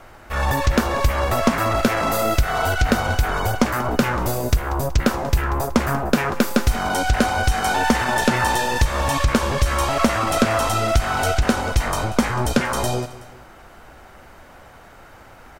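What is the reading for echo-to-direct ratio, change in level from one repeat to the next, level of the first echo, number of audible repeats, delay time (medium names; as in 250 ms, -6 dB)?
-15.5 dB, -7.0 dB, -16.5 dB, 2, 187 ms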